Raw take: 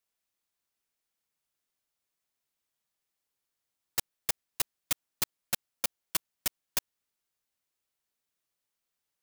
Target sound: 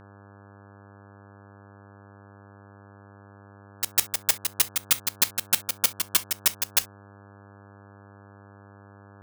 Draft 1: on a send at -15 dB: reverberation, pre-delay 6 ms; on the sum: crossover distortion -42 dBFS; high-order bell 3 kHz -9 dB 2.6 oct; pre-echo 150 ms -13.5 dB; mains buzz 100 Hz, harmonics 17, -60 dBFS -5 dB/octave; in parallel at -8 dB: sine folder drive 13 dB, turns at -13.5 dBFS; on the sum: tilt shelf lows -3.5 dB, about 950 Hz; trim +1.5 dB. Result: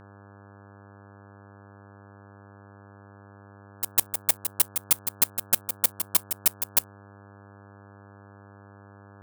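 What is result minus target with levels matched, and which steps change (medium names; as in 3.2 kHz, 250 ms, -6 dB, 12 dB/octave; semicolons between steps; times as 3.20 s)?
4 kHz band -6.0 dB; crossover distortion: distortion +5 dB
change: crossover distortion -50 dBFS; remove: high-order bell 3 kHz -9 dB 2.6 oct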